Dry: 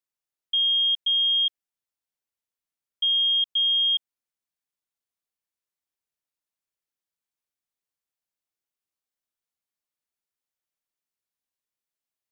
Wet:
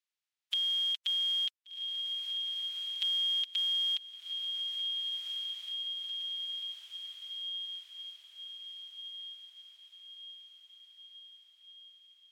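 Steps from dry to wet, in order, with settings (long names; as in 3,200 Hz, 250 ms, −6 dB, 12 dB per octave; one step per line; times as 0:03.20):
compressing power law on the bin magnitudes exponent 0.44
resonant band-pass 3,100 Hz, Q 0.94
feedback delay with all-pass diffusion 1,529 ms, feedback 52%, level −12 dB
downward compressor 2.5 to 1, threshold −41 dBFS, peak gain reduction 13.5 dB
level +4 dB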